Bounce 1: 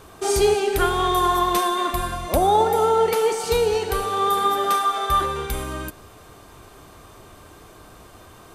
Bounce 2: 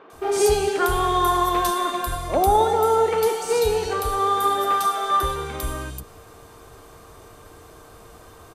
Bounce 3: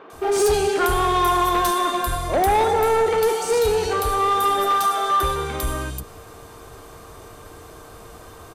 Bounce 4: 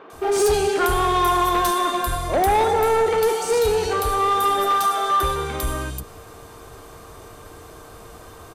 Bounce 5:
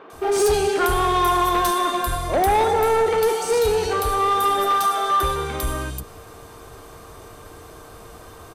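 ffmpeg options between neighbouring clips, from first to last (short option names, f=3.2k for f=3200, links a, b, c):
-filter_complex "[0:a]acrossover=split=210|2900[a][b][c];[c]adelay=100[d];[a]adelay=130[e];[e][b][d]amix=inputs=3:normalize=0,aeval=exprs='val(0)+0.00251*sin(2*PI*460*n/s)':c=same"
-af "asoftclip=type=tanh:threshold=-17.5dB,volume=4dB"
-af anull
-af "bandreject=f=7.1k:w=28"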